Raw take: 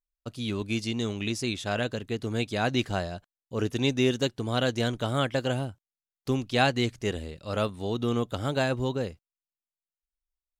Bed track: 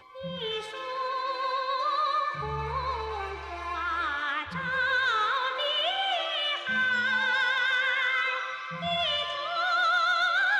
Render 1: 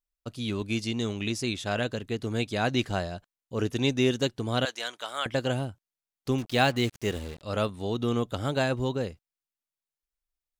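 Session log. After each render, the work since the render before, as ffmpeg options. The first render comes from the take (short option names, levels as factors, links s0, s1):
-filter_complex "[0:a]asettb=1/sr,asplit=3[s0][s1][s2];[s0]atrim=end=4.654[s3];[s1]atrim=start=4.65:end=5.26,asetpts=PTS-STARTPTS,afade=t=in:d=0.004:c=qsin,afade=t=out:st=0.606:d=0.004:c=qsin,highpass=930[s4];[s2]atrim=start=5.256[s5];[s3][s4]acrossfade=d=0.004:c1=hsin:c2=qsin[s6];[s6][s5]acrossfade=d=0.004:c1=qsin:c2=hsin,asettb=1/sr,asplit=3[s7][s8][s9];[s7]atrim=end=6.384[s10];[s8]atrim=start=6.38:end=7.42,asetpts=PTS-STARTPTS,afade=t=in:d=0.004:c=qsin,afade=t=out:st=1.036:d=0.004:c=qsin,acrusher=bits=6:mix=0:aa=0.5[s11];[s9]atrim=start=7.416[s12];[s10][s11]acrossfade=d=0.004:c1=hsin:c2=qsin[s13];[s13][s12]acrossfade=d=0.004:c1=qsin:c2=hsin"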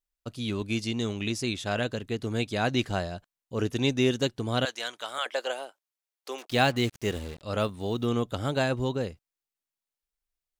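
-filter_complex "[0:a]asettb=1/sr,asplit=3[s0][s1][s2];[s0]atrim=end=5.184[s3];[s1]atrim=start=5.18:end=6.5,asetpts=PTS-STARTPTS,afade=t=in:d=0.004:c=qsin,afade=t=out:st=1.316:d=0.004:c=qsin,highpass=f=470:w=0.5412,highpass=f=470:w=1.3066[s4];[s2]atrim=start=6.496[s5];[s3][s4]acrossfade=d=0.004:c1=hsin:c2=qsin[s6];[s6][s5]acrossfade=d=0.004:c1=qsin:c2=hsin,asettb=1/sr,asplit=3[s7][s8][s9];[s7]atrim=end=7.604[s10];[s8]atrim=start=7.6:end=8.06,asetpts=PTS-STARTPTS,afade=t=in:d=0.004:c=qsin,afade=t=out:st=0.456:d=0.004:c=qsin,acrusher=bits=9:mode=log:mix=0:aa=0.000001[s11];[s9]atrim=start=8.056[s12];[s10][s11]acrossfade=d=0.004:c1=hsin:c2=qsin[s13];[s13][s12]acrossfade=d=0.004:c1=qsin:c2=hsin"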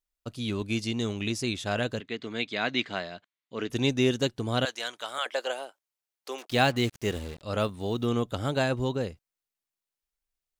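-filter_complex "[0:a]asettb=1/sr,asplit=3[s0][s1][s2];[s0]atrim=end=2.004[s3];[s1]atrim=start=2:end=3.7,asetpts=PTS-STARTPTS,afade=t=in:d=0.004:c=qsin,afade=t=out:st=1.696:d=0.004:c=qsin,highpass=260,equalizer=f=360:t=q:w=4:g=-4,equalizer=f=530:t=q:w=4:g=-5,equalizer=f=810:t=q:w=4:g=-5,equalizer=f=2100:t=q:w=4:g=7,equalizer=f=3500:t=q:w=4:g=4,equalizer=f=5600:t=q:w=4:g=-8,lowpass=f=6000:w=0.5412,lowpass=f=6000:w=1.3066[s4];[s2]atrim=start=3.696[s5];[s3][s4]acrossfade=d=0.004:c1=hsin:c2=qsin[s6];[s6][s5]acrossfade=d=0.004:c1=qsin:c2=hsin"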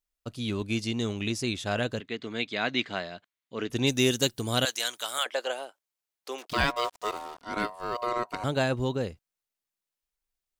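-filter_complex "[0:a]asplit=3[s0][s1][s2];[s0]afade=t=out:st=3.86:d=0.02[s3];[s1]aemphasis=mode=production:type=75fm,afade=t=in:st=3.86:d=0.02,afade=t=out:st=5.23:d=0.02[s4];[s2]afade=t=in:st=5.23:d=0.02[s5];[s3][s4][s5]amix=inputs=3:normalize=0,asettb=1/sr,asplit=3[s6][s7][s8];[s6]atrim=end=6.534[s9];[s7]atrim=start=6.53:end=8.44,asetpts=PTS-STARTPTS,afade=t=in:d=0.004:c=qsin,afade=t=out:st=1.906:d=0.004:c=qsin,aeval=exprs='val(0)*sin(2*PI*840*n/s)':c=same[s10];[s8]atrim=start=8.436[s11];[s9][s10]acrossfade=d=0.004:c1=hsin:c2=qsin[s12];[s12][s11]acrossfade=d=0.004:c1=qsin:c2=hsin"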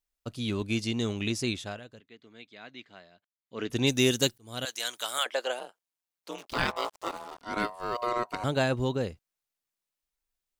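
-filter_complex "[0:a]asplit=3[s0][s1][s2];[s0]afade=t=out:st=5.59:d=0.02[s3];[s1]aeval=exprs='val(0)*sin(2*PI*87*n/s)':c=same,afade=t=in:st=5.59:d=0.02,afade=t=out:st=7.3:d=0.02[s4];[s2]afade=t=in:st=7.3:d=0.02[s5];[s3][s4][s5]amix=inputs=3:normalize=0,asplit=4[s6][s7][s8][s9];[s6]atrim=end=1.8,asetpts=PTS-STARTPTS,afade=t=out:st=1.5:d=0.3:silence=0.125893[s10];[s7]atrim=start=1.8:end=3.38,asetpts=PTS-STARTPTS,volume=0.126[s11];[s8]atrim=start=3.38:end=4.38,asetpts=PTS-STARTPTS,afade=t=in:d=0.3:silence=0.125893,afade=t=out:st=0.996:d=0.004:c=hsin[s12];[s9]atrim=start=4.38,asetpts=PTS-STARTPTS,afade=t=in:d=0.64[s13];[s10][s11][s12][s13]concat=n=4:v=0:a=1"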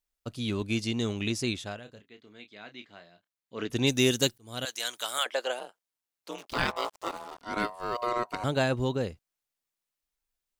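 -filter_complex "[0:a]asettb=1/sr,asplit=3[s0][s1][s2];[s0]atrim=end=1.834[s3];[s1]atrim=start=1.83:end=3.65,asetpts=PTS-STARTPTS,afade=t=in:d=0.004:c=qsin,afade=t=out:st=1.816:d=0.004:c=qsin,asplit=2[s4][s5];[s5]adelay=29,volume=0.355[s6];[s4][s6]amix=inputs=2:normalize=0,atrim=end_sample=80262[s7];[s2]atrim=start=3.646[s8];[s3][s7]acrossfade=d=0.004:c1=hsin:c2=qsin[s9];[s9][s8]acrossfade=d=0.004:c1=qsin:c2=hsin"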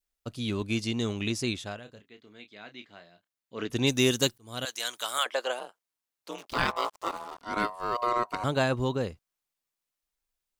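-af "adynamicequalizer=threshold=0.00631:dfrequency=1100:dqfactor=2.9:tfrequency=1100:tqfactor=2.9:attack=5:release=100:ratio=0.375:range=2.5:mode=boostabove:tftype=bell"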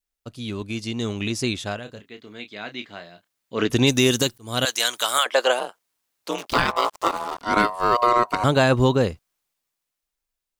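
-af "alimiter=limit=0.112:level=0:latency=1:release=196,dynaudnorm=f=240:g=13:m=3.98"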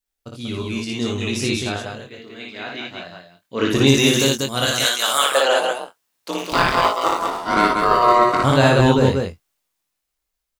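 -filter_complex "[0:a]asplit=2[s0][s1];[s1]adelay=22,volume=0.531[s2];[s0][s2]amix=inputs=2:normalize=0,aecho=1:1:58.31|189.5:0.794|0.631"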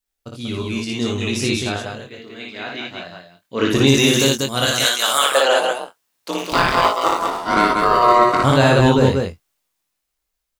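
-af "volume=1.19,alimiter=limit=0.708:level=0:latency=1"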